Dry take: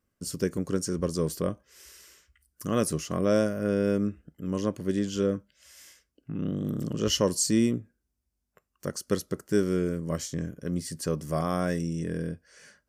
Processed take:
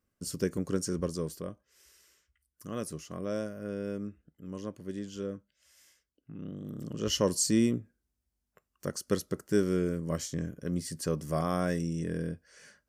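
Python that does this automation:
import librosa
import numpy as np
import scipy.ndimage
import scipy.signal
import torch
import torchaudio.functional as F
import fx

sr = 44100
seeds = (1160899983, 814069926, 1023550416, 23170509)

y = fx.gain(x, sr, db=fx.line((0.97, -2.5), (1.46, -10.5), (6.67, -10.5), (7.27, -2.0)))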